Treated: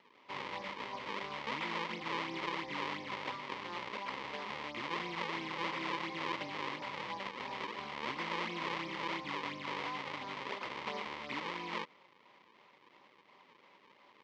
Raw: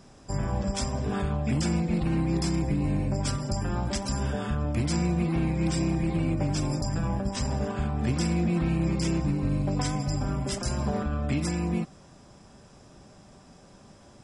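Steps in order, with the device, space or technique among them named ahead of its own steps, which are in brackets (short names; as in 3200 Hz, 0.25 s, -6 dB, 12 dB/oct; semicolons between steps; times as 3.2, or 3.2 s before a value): circuit-bent sampling toy (decimation with a swept rate 37×, swing 160% 2.9 Hz; speaker cabinet 500–4700 Hz, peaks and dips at 680 Hz -9 dB, 1000 Hz +9 dB, 1500 Hz -6 dB, 2100 Hz +9 dB, 3100 Hz +4 dB); gain -6 dB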